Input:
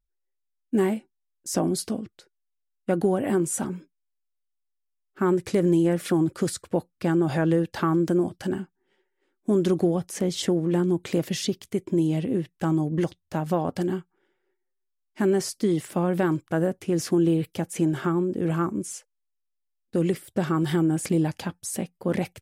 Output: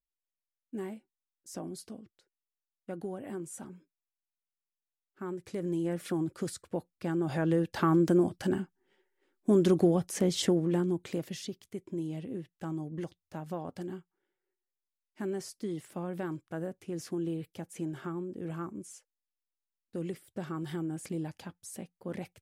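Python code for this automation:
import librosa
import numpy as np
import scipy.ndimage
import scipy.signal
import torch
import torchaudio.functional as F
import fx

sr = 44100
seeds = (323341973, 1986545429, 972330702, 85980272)

y = fx.gain(x, sr, db=fx.line((5.37, -16.0), (5.96, -9.5), (7.09, -9.5), (7.93, -2.0), (10.42, -2.0), (11.47, -13.0)))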